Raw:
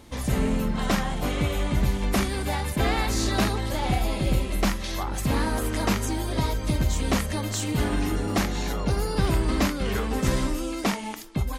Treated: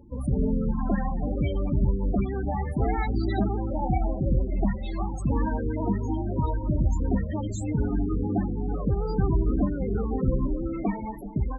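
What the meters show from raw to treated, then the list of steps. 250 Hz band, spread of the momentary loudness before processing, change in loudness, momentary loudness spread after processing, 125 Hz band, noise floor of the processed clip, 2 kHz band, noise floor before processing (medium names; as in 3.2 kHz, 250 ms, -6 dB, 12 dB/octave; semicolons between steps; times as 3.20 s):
0.0 dB, 4 LU, -1.5 dB, 4 LU, 0.0 dB, -33 dBFS, -12.0 dB, -32 dBFS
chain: two-band feedback delay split 810 Hz, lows 376 ms, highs 217 ms, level -12 dB; loudest bins only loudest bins 16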